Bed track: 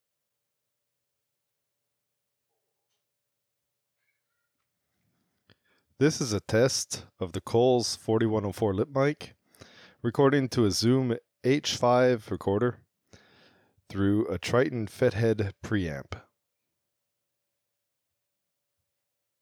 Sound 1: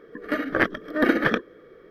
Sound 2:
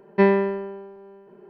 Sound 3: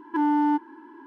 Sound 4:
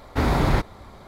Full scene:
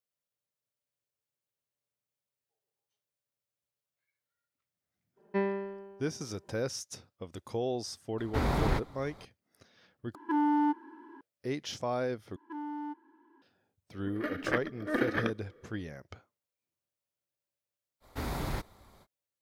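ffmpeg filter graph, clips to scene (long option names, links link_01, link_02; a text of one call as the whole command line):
ffmpeg -i bed.wav -i cue0.wav -i cue1.wav -i cue2.wav -i cue3.wav -filter_complex "[4:a]asplit=2[link_01][link_02];[3:a]asplit=2[link_03][link_04];[0:a]volume=-10.5dB[link_05];[link_04]aresample=32000,aresample=44100[link_06];[link_02]aemphasis=mode=production:type=50kf[link_07];[link_05]asplit=3[link_08][link_09][link_10];[link_08]atrim=end=10.154[link_11];[link_03]atrim=end=1.06,asetpts=PTS-STARTPTS,volume=-5dB[link_12];[link_09]atrim=start=11.206:end=12.364[link_13];[link_06]atrim=end=1.06,asetpts=PTS-STARTPTS,volume=-17dB[link_14];[link_10]atrim=start=13.416[link_15];[2:a]atrim=end=1.49,asetpts=PTS-STARTPTS,volume=-13.5dB,afade=type=in:duration=0.02,afade=type=out:start_time=1.47:duration=0.02,adelay=5160[link_16];[link_01]atrim=end=1.07,asetpts=PTS-STARTPTS,volume=-8.5dB,afade=type=in:duration=0.004:curve=hsin,afade=type=out:start_time=1.066:duration=0.004:curve=hsin,adelay=360738S[link_17];[1:a]atrim=end=1.9,asetpts=PTS-STARTPTS,volume=-10dB,afade=type=in:duration=0.004:curve=hsin,afade=type=out:start_time=1.896:duration=0.004:curve=hsin,adelay=13920[link_18];[link_07]atrim=end=1.07,asetpts=PTS-STARTPTS,volume=-15dB,afade=type=in:duration=0.05,afade=type=out:start_time=1.02:duration=0.05,adelay=18000[link_19];[link_11][link_12]acrossfade=duration=0.004:curve1=hsin:curve2=hsin[link_20];[link_20][link_13]acrossfade=duration=0.004:curve1=hsin:curve2=hsin[link_21];[link_21][link_14]acrossfade=duration=0.004:curve1=hsin:curve2=hsin[link_22];[link_22][link_15]acrossfade=duration=0.004:curve1=hsin:curve2=hsin[link_23];[link_23][link_16][link_17][link_18][link_19]amix=inputs=5:normalize=0" out.wav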